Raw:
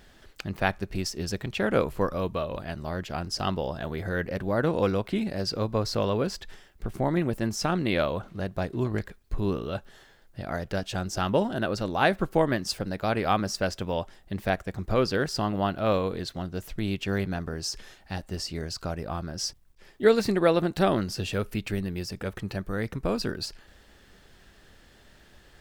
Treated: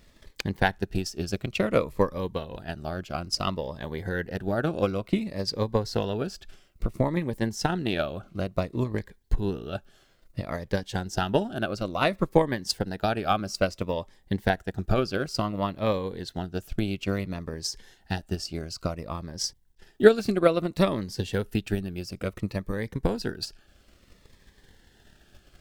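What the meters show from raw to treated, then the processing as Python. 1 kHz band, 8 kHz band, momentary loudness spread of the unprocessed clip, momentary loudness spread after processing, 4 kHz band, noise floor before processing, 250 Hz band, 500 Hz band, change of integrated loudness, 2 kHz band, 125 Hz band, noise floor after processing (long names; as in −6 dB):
−0.5 dB, −0.5 dB, 10 LU, 10 LU, 0.0 dB, −56 dBFS, 0.0 dB, +0.5 dB, 0.0 dB, −0.5 dB, 0.0 dB, −61 dBFS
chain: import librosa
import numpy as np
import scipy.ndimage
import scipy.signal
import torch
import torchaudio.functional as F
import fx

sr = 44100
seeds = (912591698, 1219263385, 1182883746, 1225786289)

y = fx.transient(x, sr, attack_db=10, sustain_db=-2)
y = fx.notch_cascade(y, sr, direction='falling', hz=0.58)
y = y * 10.0 ** (-2.5 / 20.0)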